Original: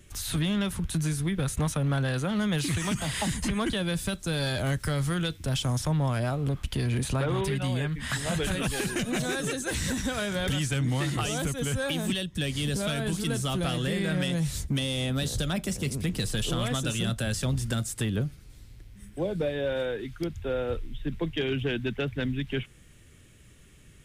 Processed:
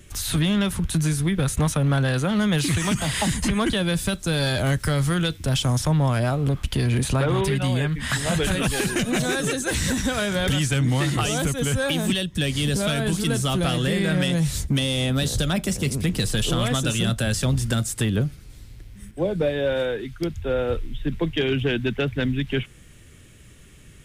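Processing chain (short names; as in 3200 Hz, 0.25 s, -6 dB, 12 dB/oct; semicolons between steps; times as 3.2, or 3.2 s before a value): 19.11–20.59 three-band expander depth 40%; gain +6 dB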